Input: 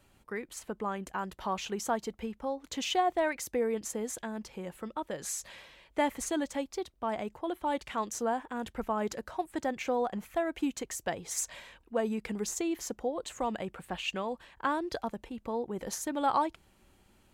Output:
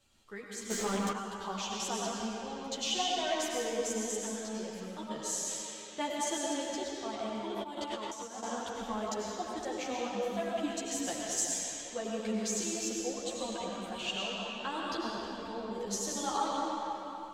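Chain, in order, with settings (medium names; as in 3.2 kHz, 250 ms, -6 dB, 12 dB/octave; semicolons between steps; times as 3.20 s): high-order bell 4.9 kHz +9.5 dB; algorithmic reverb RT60 3.5 s, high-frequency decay 0.75×, pre-delay 60 ms, DRR -3.5 dB; 0.70–1.12 s: waveshaping leveller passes 3; 5.61–6.70 s: high-pass 100 Hz 6 dB/octave; 7.56–8.43 s: compressor with a negative ratio -31 dBFS, ratio -0.5; three-phase chorus; trim -5 dB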